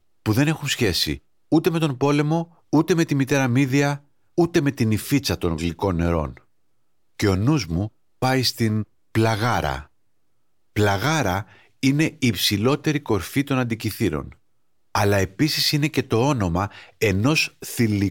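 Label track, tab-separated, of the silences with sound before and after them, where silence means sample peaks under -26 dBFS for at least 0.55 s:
6.280000	7.200000	silence
9.800000	10.760000	silence
14.220000	14.950000	silence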